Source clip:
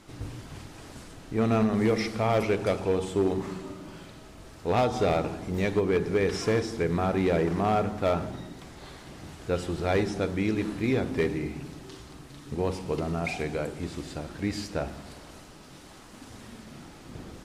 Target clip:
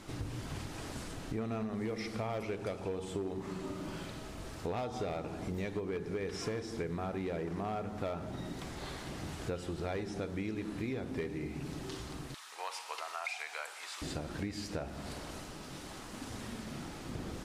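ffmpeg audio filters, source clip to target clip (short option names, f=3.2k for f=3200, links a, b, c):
-filter_complex "[0:a]asettb=1/sr,asplit=3[a][b][c];[a]atrim=end=12.344[d];[b]atrim=start=12.34:end=14.02,asetpts=PTS-STARTPTS,afade=t=in:d=0.004:c=qsin,afade=t=out:st=1.676:d=0.004:c=qsin,highpass=f=900:w=0.5412,highpass=f=900:w=1.3066[e];[c]atrim=start=14.016[f];[d][e]acrossfade=d=0.004:c1=hsin:c2=qsin[g];[g][f]acrossfade=d=0.004:c1=qsin:c2=hsin,acompressor=threshold=-38dB:ratio=6,volume=2.5dB"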